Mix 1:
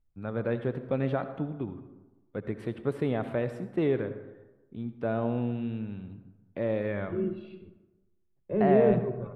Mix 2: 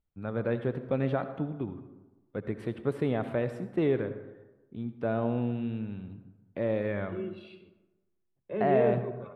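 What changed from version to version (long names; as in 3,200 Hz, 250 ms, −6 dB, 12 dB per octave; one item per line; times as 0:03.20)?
second voice: add spectral tilt +3.5 dB per octave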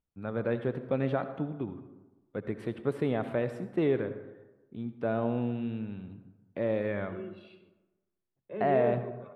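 second voice −4.5 dB
master: add low-shelf EQ 69 Hz −9 dB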